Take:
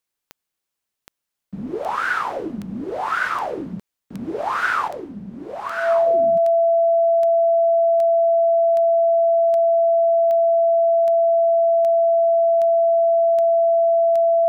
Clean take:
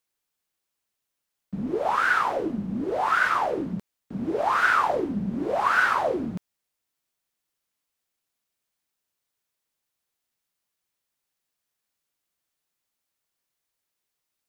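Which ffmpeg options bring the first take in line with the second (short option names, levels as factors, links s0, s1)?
-af "adeclick=t=4,bandreject=f=670:w=30,asetnsamples=n=441:p=0,asendcmd='4.88 volume volume 6dB',volume=1"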